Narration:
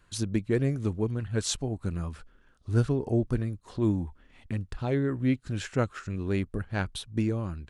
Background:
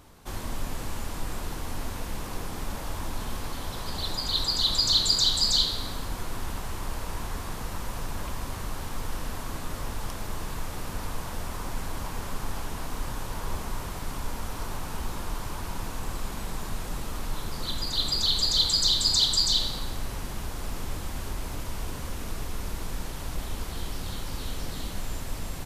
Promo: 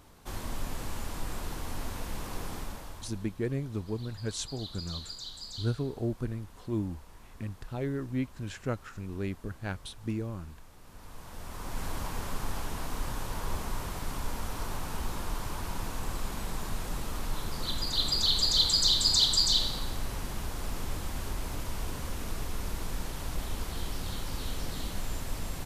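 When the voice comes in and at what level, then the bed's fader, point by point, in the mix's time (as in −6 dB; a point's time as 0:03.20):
2.90 s, −6.0 dB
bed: 0:02.54 −3 dB
0:03.35 −19.5 dB
0:10.79 −19.5 dB
0:11.85 −1.5 dB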